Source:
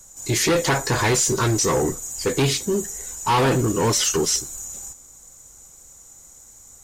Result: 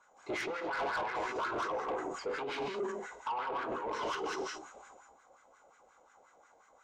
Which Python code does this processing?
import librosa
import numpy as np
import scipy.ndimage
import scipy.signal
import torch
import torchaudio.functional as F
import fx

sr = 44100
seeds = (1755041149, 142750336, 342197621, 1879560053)

y = scipy.signal.sosfilt(scipy.signal.butter(2, 3500.0, 'lowpass', fs=sr, output='sos'), x)
y = fx.peak_eq(y, sr, hz=120.0, db=-12.5, octaves=1.0)
y = fx.rev_gated(y, sr, seeds[0], gate_ms=240, shape='flat', drr_db=0.0)
y = fx.over_compress(y, sr, threshold_db=-24.0, ratio=-1.0)
y = fx.wah_lfo(y, sr, hz=5.6, low_hz=610.0, high_hz=1600.0, q=2.6)
y = 10.0 ** (-30.0 / 20.0) * np.tanh(y / 10.0 ** (-30.0 / 20.0))
y = fx.notch(y, sr, hz=1800.0, q=8.2)
y = fx.sustainer(y, sr, db_per_s=62.0)